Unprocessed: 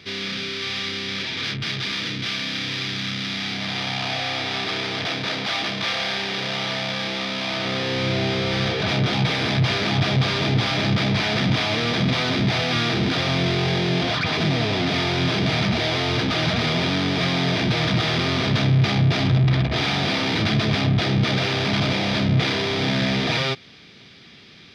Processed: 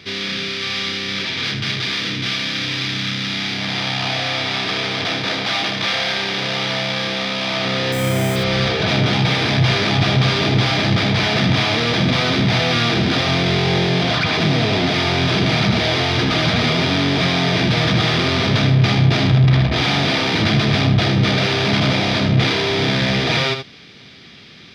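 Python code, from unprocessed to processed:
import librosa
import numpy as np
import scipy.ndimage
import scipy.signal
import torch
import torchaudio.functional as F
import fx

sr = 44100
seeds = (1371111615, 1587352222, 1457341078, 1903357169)

y = fx.resample_bad(x, sr, factor=8, down='filtered', up='hold', at=(7.92, 8.36))
y = y + 10.0 ** (-8.0 / 20.0) * np.pad(y, (int(78 * sr / 1000.0), 0))[:len(y)]
y = F.gain(torch.from_numpy(y), 4.0).numpy()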